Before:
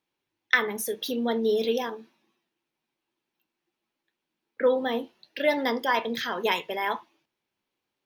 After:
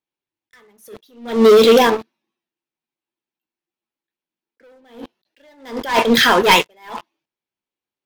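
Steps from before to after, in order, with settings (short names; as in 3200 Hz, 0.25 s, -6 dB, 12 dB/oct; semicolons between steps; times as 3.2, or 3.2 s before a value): sample leveller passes 5; attack slew limiter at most 130 dB/s; gain +1.5 dB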